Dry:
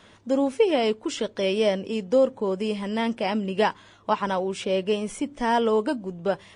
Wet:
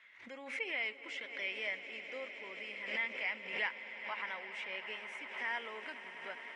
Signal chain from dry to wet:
resonant band-pass 2,100 Hz, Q 8.4
echo that builds up and dies away 103 ms, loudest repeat 8, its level −17 dB
background raised ahead of every attack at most 78 dB per second
level +3.5 dB

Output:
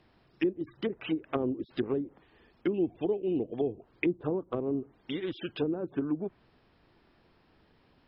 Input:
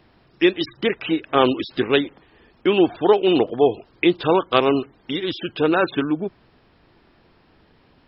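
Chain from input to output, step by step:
treble cut that deepens with the level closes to 330 Hz, closed at −15.5 dBFS
0:02.74–0:03.72: high shelf with overshoot 1,900 Hz +10 dB, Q 3
level −8.5 dB

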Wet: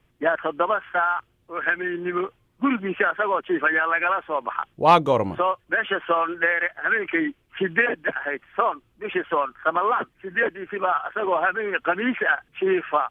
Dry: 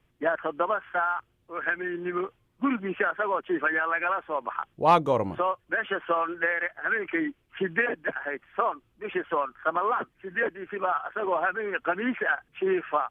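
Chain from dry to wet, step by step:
dynamic equaliser 3,200 Hz, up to +4 dB, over −43 dBFS, Q 1.1
level +4 dB

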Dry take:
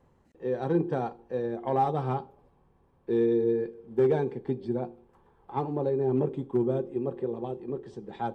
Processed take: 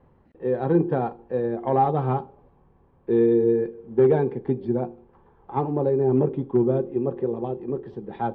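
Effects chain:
high-frequency loss of the air 360 metres
level +6.5 dB

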